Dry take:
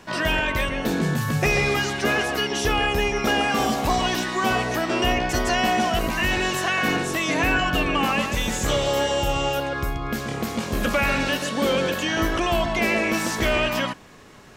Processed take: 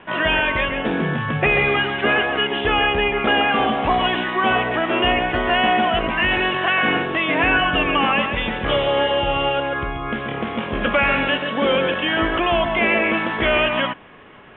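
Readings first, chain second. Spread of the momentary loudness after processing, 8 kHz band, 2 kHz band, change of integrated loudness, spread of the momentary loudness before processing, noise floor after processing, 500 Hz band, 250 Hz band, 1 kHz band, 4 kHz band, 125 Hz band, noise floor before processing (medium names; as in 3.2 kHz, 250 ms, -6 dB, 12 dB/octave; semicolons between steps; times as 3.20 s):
5 LU, under -40 dB, +5.0 dB, +3.5 dB, 4 LU, -29 dBFS, +3.5 dB, +1.5 dB, +4.5 dB, +3.5 dB, -1.0 dB, -32 dBFS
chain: steep low-pass 3.4 kHz 96 dB/octave; bass shelf 230 Hz -8 dB; trim +5 dB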